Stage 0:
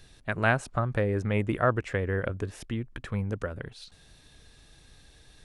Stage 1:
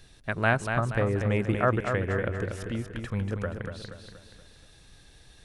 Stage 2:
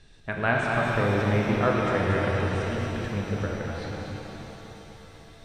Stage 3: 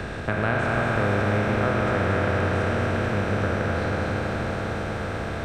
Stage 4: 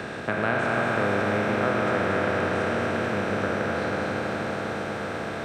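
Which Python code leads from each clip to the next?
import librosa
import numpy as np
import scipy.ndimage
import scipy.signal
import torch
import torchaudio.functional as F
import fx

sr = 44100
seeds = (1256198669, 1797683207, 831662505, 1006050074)

y1 = fx.echo_feedback(x, sr, ms=238, feedback_pct=46, wet_db=-6.5)
y2 = scipy.signal.sosfilt(scipy.signal.ellip(4, 1.0, 40, 9000.0, 'lowpass', fs=sr, output='sos'), y1)
y2 = fx.high_shelf(y2, sr, hz=4100.0, db=-7.5)
y2 = fx.rev_shimmer(y2, sr, seeds[0], rt60_s=3.7, semitones=7, shimmer_db=-8, drr_db=-1.5)
y3 = fx.bin_compress(y2, sr, power=0.4)
y3 = fx.peak_eq(y3, sr, hz=61.0, db=8.5, octaves=0.82)
y3 = fx.band_squash(y3, sr, depth_pct=40)
y3 = y3 * 10.0 ** (-4.0 / 20.0)
y4 = scipy.signal.sosfilt(scipy.signal.butter(2, 170.0, 'highpass', fs=sr, output='sos'), y3)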